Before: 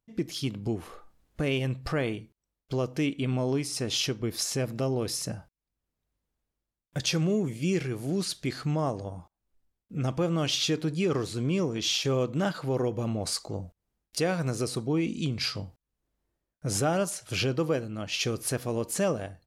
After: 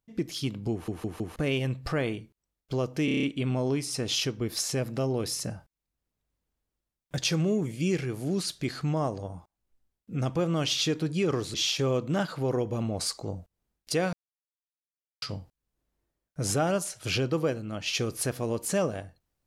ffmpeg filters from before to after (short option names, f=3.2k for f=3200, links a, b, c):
-filter_complex "[0:a]asplit=14[a][b][c][d][e][f][g][h][i][j][k][l][m][n];[a]atrim=end=0.882[o];[b]atrim=start=0.718:end=0.882[p];[c]atrim=start=0.718:end=0.882[q];[d]atrim=start=0.718:end=0.882[r];[e]atrim=start=1.358:end=3.082[s];[f]atrim=start=3.048:end=3.082[t];[g]atrim=start=3.048:end=3.082[u];[h]atrim=start=3.048:end=3.082[v];[i]atrim=start=3.048:end=3.082[w];[j]atrim=start=3.048:end=3.082[x];[k]atrim=start=3.048:end=11.362[y];[l]atrim=start=11.798:end=14.39,asetpts=PTS-STARTPTS,afade=t=out:st=2.588:d=0.004:c=hsin[z];[m]atrim=start=14.39:end=15.48,asetpts=PTS-STARTPTS,volume=0[aa];[n]atrim=start=15.48,asetpts=PTS-STARTPTS,afade=t=in:d=0.004:c=hsin[ab];[o][p]acrossfade=d=0.004:c1=hsin:c2=hsin[ac];[ac][q]acrossfade=d=0.004:c1=hsin:c2=hsin[ad];[ad][r]acrossfade=d=0.004:c1=hsin:c2=hsin[ae];[ae][s]acrossfade=d=0.004:c1=hsin:c2=hsin[af];[af][t]acrossfade=d=0.004:c1=hsin:c2=hsin[ag];[ag][u]acrossfade=d=0.004:c1=hsin:c2=hsin[ah];[ah][v]acrossfade=d=0.004:c1=hsin:c2=hsin[ai];[ai][w]acrossfade=d=0.004:c1=hsin:c2=hsin[aj];[aj][x]acrossfade=d=0.004:c1=hsin:c2=hsin[ak];[ak][y]acrossfade=d=0.004:c1=hsin:c2=hsin[al];[z][aa][ab]concat=n=3:v=0:a=1[am];[al][am]acrossfade=d=0.004:c1=hsin:c2=hsin"